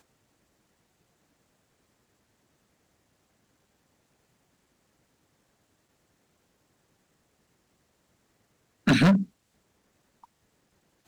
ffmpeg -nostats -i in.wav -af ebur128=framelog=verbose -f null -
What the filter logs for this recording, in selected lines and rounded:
Integrated loudness:
  I:         -23.2 LUFS
  Threshold: -44.5 LUFS
Loudness range:
  LRA:         4.5 LU
  Threshold: -55.0 LUFS
  LRA low:   -33.4 LUFS
  LRA high:  -29.0 LUFS